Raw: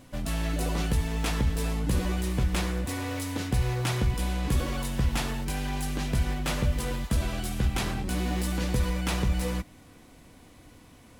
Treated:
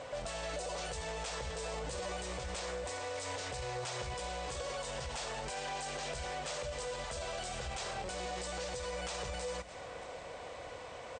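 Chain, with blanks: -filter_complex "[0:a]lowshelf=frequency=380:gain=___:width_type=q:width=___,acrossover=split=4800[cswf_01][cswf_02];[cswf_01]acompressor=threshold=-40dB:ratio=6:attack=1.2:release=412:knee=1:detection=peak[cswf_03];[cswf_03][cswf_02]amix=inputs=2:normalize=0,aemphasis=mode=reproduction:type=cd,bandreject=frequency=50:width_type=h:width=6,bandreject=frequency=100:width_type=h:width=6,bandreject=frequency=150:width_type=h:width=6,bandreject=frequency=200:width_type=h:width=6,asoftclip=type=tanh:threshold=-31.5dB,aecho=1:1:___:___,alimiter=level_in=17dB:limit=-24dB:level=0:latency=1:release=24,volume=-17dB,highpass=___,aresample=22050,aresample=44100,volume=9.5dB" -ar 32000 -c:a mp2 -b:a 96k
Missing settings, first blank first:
-11, 3, 619, 0.075, 43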